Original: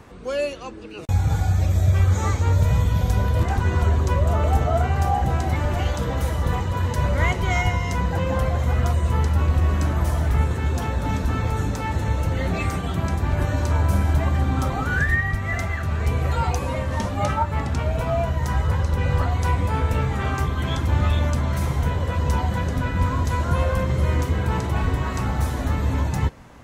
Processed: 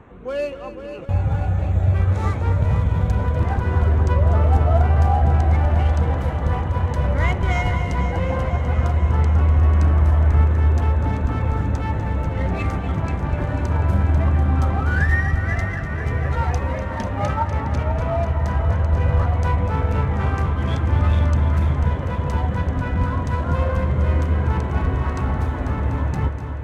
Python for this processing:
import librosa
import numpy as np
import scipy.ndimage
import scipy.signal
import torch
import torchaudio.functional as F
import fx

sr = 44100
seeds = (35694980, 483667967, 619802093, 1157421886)

y = fx.wiener(x, sr, points=9)
y = fx.high_shelf(y, sr, hz=7200.0, db=-10.0)
y = fx.echo_heads(y, sr, ms=246, heads='first and second', feedback_pct=72, wet_db=-13)